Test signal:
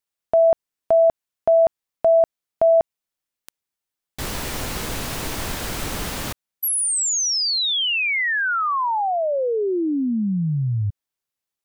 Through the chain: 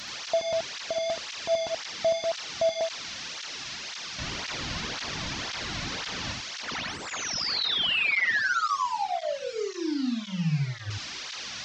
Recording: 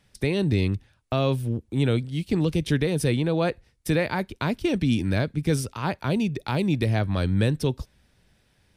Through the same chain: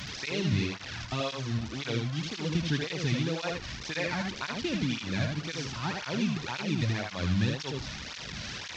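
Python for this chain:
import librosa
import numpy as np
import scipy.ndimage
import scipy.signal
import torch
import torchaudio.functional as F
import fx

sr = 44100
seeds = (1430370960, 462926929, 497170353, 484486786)

y = fx.delta_mod(x, sr, bps=32000, step_db=-27.5)
y = fx.peak_eq(y, sr, hz=430.0, db=-8.5, octaves=2.6)
y = y + 10.0 ** (-4.0 / 20.0) * np.pad(y, (int(78 * sr / 1000.0), 0))[:len(y)]
y = fx.flanger_cancel(y, sr, hz=1.9, depth_ms=2.6)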